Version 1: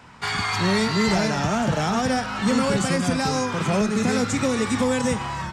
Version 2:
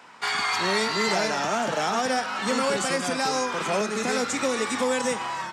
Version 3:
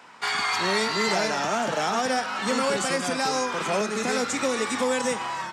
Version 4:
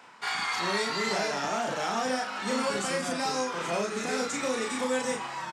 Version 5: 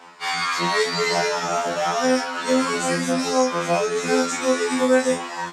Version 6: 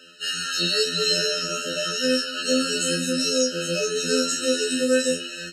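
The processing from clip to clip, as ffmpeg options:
-af "highpass=370"
-af anull
-filter_complex "[0:a]areverse,acompressor=mode=upward:threshold=-31dB:ratio=2.5,areverse,asplit=2[a][b];[b]adelay=35,volume=-2.5dB[c];[a][c]amix=inputs=2:normalize=0,volume=-6.5dB"
-af "afftfilt=real='re*2*eq(mod(b,4),0)':imag='im*2*eq(mod(b,4),0)':win_size=2048:overlap=0.75,volume=9dB"
-af "highshelf=f=2.1k:t=q:w=1.5:g=9,afftfilt=real='re*eq(mod(floor(b*sr/1024/630),2),0)':imag='im*eq(mod(floor(b*sr/1024/630),2),0)':win_size=1024:overlap=0.75,volume=-2.5dB"

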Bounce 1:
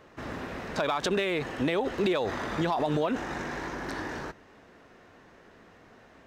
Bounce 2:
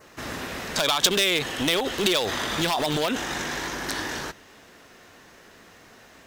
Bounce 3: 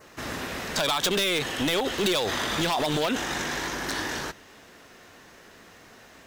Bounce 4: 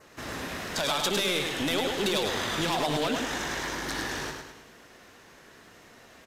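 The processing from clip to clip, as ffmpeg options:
-af "aeval=exprs='0.0841*(abs(mod(val(0)/0.0841+3,4)-2)-1)':c=same,crystalizer=i=5:c=0,adynamicequalizer=threshold=0.00562:dfrequency=3300:dqfactor=3.3:tfrequency=3300:tqfactor=3.3:attack=5:release=100:ratio=0.375:range=3.5:mode=boostabove:tftype=bell,volume=1.5dB"
-af "asoftclip=type=hard:threshold=-20dB"
-af "aecho=1:1:104|208|312|416|520|624:0.596|0.268|0.121|0.0543|0.0244|0.011,volume=-3.5dB" -ar 32000 -c:a aac -b:a 96k

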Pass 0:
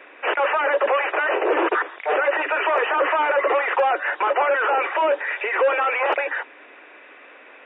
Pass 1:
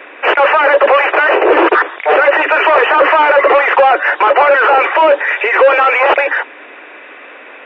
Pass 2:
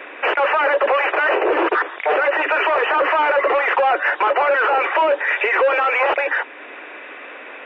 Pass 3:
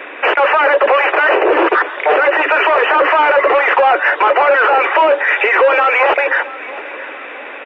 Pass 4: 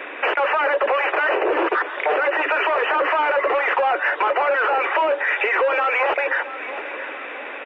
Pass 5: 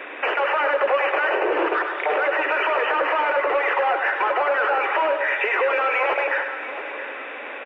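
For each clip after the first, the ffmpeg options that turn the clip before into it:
-af "acontrast=61,volume=5dB"
-af "alimiter=limit=-9dB:level=0:latency=1:release=377,volume=-1.5dB"
-af "aecho=1:1:676|1352|2028|2704:0.126|0.0579|0.0266|0.0123,volume=5.5dB"
-af "acompressor=threshold=-18dB:ratio=2,volume=-3dB"
-af "aecho=1:1:101|202|303|404|505|606|707|808:0.422|0.249|0.147|0.0866|0.0511|0.0301|0.0178|0.0105,volume=-2.5dB"

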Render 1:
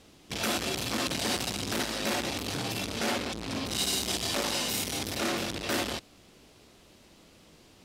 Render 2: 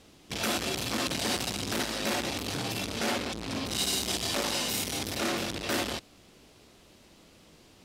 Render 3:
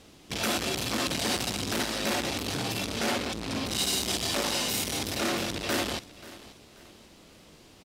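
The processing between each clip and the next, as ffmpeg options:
-af anull
-filter_complex "[0:a]asplit=2[a][b];[b]asoftclip=type=tanh:threshold=-33dB,volume=-9dB[c];[a][c]amix=inputs=2:normalize=0,aecho=1:1:534|1068|1602:0.119|0.0428|0.0154"

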